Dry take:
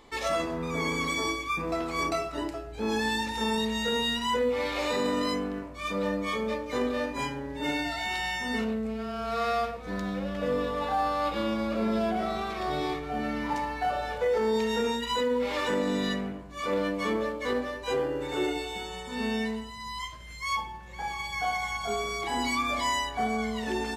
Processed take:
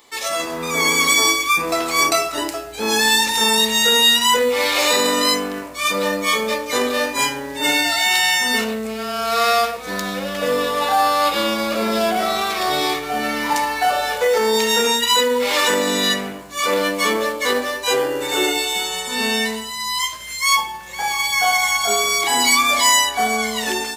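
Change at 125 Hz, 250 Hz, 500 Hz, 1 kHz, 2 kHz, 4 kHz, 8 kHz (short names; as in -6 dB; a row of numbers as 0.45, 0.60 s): +1.5, +4.5, +8.5, +11.0, +14.0, +17.0, +22.0 dB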